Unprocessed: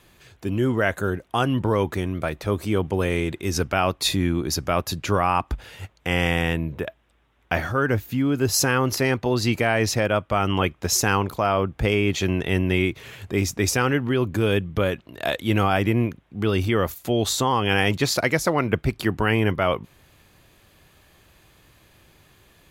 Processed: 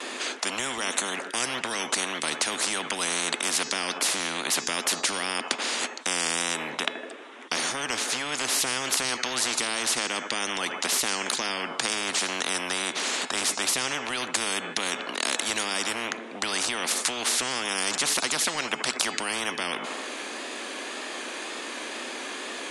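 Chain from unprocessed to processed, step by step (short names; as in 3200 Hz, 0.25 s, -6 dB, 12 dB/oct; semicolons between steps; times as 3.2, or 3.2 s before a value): wow and flutter 57 cents; Chebyshev band-pass 240–9700 Hz, order 5; in parallel at -1.5 dB: limiter -19.5 dBFS, peak gain reduction 11.5 dB; on the sum: de-hum 429.2 Hz, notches 19; on a send: analogue delay 78 ms, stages 1024, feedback 51%, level -22 dB; on the sum: spectral compressor 10:1; gain +2 dB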